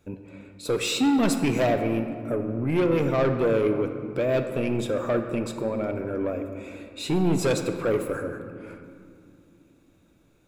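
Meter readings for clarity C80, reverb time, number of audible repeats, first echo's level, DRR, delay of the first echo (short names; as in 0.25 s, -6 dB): 8.5 dB, 2.7 s, none, none, 6.0 dB, none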